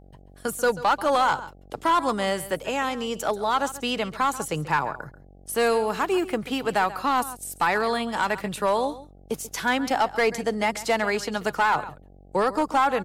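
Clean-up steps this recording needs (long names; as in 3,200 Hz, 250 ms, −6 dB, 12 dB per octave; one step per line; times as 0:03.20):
clipped peaks rebuilt −14.5 dBFS
hum removal 47.1 Hz, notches 17
echo removal 137 ms −16 dB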